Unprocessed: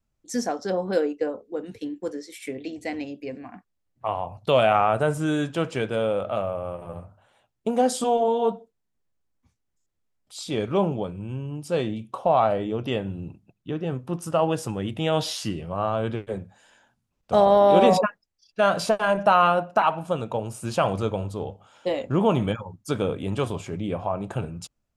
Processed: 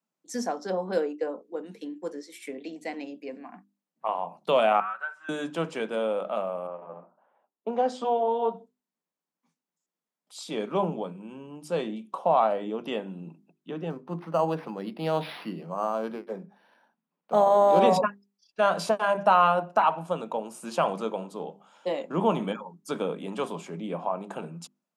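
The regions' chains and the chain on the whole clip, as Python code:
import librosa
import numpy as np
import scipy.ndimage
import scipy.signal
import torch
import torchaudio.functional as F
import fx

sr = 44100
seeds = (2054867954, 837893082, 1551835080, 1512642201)

y = fx.chain(x, sr, fx.ladder_bandpass(hz=1600.0, resonance_pct=65),
    fx.comb(ms=5.3, depth=0.96), at=(4.8, 5.29))
y = fx.chain(y, sr, fx.highpass(hz=260.0, slope=12),
    fx.air_absorb(metres=160.0),
    fx.env_lowpass(base_hz=1200.0, full_db=-21.0), at=(6.67, 8.54))
y = fx.chain(y, sr, fx.air_absorb(metres=63.0),
    fx.resample_linear(factor=6), at=(13.9, 17.8))
y = scipy.signal.sosfilt(scipy.signal.cheby1(6, 1.0, 160.0, 'highpass', fs=sr, output='sos'), y)
y = fx.peak_eq(y, sr, hz=980.0, db=4.5, octaves=0.54)
y = fx.hum_notches(y, sr, base_hz=50, count=8)
y = y * 10.0 ** (-3.5 / 20.0)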